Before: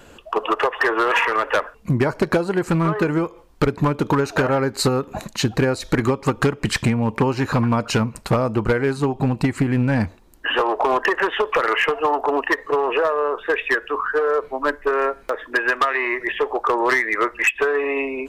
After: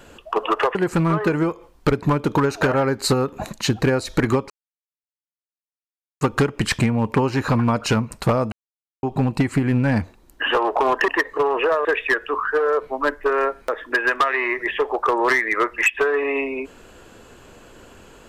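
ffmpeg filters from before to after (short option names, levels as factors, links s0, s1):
-filter_complex "[0:a]asplit=7[s0][s1][s2][s3][s4][s5][s6];[s0]atrim=end=0.752[s7];[s1]atrim=start=2.498:end=6.25,asetpts=PTS-STARTPTS,afade=t=out:st=3.748:d=0.004:c=hsin,apad=pad_dur=1.71[s8];[s2]atrim=start=6.25:end=8.56,asetpts=PTS-STARTPTS,afade=t=in:d=0.004:c=hsin,afade=t=out:st=2.306:d=0.004:c=hsin[s9];[s3]atrim=start=8.56:end=9.07,asetpts=PTS-STARTPTS,volume=0[s10];[s4]atrim=start=9.07:end=11.122,asetpts=PTS-STARTPTS,afade=t=in:d=0.004:c=hsin[s11];[s5]atrim=start=12.408:end=13.182[s12];[s6]atrim=start=13.458[s13];[s8][s9][s10][s11]concat=n=4:v=0:a=1[s14];[s7][s14]acrossfade=d=0.004:c1=hsin:c2=hsin[s15];[s15][s12]acrossfade=d=0.004:c1=hsin:c2=hsin[s16];[s16][s13]acrossfade=d=0.004:c1=hsin:c2=hsin"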